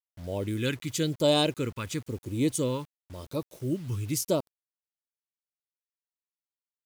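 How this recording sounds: phasing stages 2, 0.96 Hz, lowest notch 640–1500 Hz; a quantiser's noise floor 10-bit, dither none

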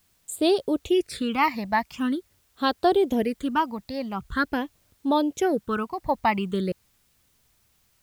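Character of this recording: phasing stages 8, 0.45 Hz, lowest notch 410–2100 Hz; a quantiser's noise floor 12-bit, dither triangular

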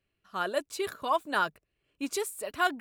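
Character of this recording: noise floor -82 dBFS; spectral tilt -2.0 dB/oct

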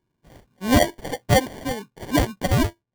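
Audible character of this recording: aliases and images of a low sample rate 1300 Hz, jitter 0%

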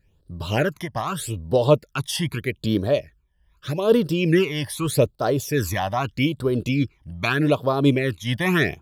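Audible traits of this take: phasing stages 12, 0.81 Hz, lowest notch 410–2400 Hz; noise-modulated level

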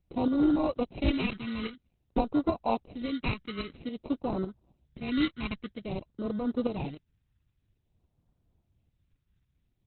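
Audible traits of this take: aliases and images of a low sample rate 1700 Hz, jitter 0%; phasing stages 2, 0.51 Hz, lowest notch 630–2300 Hz; tremolo saw up 3.6 Hz, depth 60%; Opus

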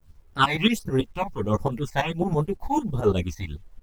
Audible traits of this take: phasing stages 8, 1.4 Hz, lowest notch 380–3100 Hz; tremolo saw up 9 Hz, depth 90%; a quantiser's noise floor 12-bit, dither none; a shimmering, thickened sound

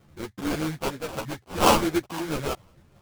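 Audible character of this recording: phasing stages 8, 2.2 Hz, lowest notch 540–1100 Hz; aliases and images of a low sample rate 1900 Hz, jitter 20%; a shimmering, thickened sound

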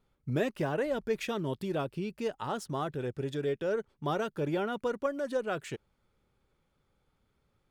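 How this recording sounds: noise floor -76 dBFS; spectral tilt -5.5 dB/oct

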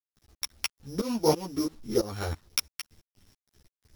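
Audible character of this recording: a buzz of ramps at a fixed pitch in blocks of 8 samples; tremolo saw up 3 Hz, depth 95%; a quantiser's noise floor 10-bit, dither none; a shimmering, thickened sound

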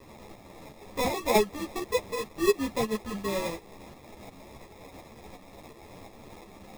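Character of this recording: a quantiser's noise floor 8-bit, dither triangular; tremolo saw up 2.8 Hz, depth 50%; aliases and images of a low sample rate 1500 Hz, jitter 0%; a shimmering, thickened sound

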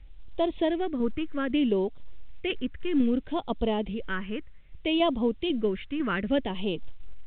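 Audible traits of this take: tremolo saw down 2 Hz, depth 40%; a quantiser's noise floor 12-bit, dither triangular; phasing stages 4, 0.63 Hz, lowest notch 750–1600 Hz; A-law

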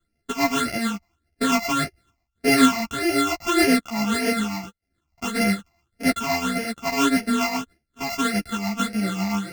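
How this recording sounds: a buzz of ramps at a fixed pitch in blocks of 64 samples; phasing stages 8, 1.7 Hz, lowest notch 440–1100 Hz; tremolo triangle 7.3 Hz, depth 50%; a shimmering, thickened sound

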